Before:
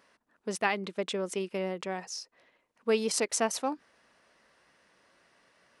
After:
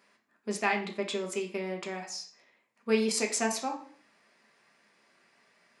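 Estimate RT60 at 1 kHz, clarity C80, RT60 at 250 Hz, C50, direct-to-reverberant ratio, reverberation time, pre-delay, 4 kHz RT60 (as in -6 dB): 0.45 s, 14.0 dB, 0.50 s, 10.0 dB, 1.5 dB, 0.50 s, 3 ms, 0.45 s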